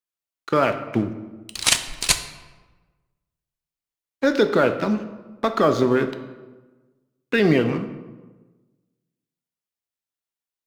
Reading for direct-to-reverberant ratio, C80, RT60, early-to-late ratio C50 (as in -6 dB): 8.0 dB, 13.0 dB, 1.3 s, 11.0 dB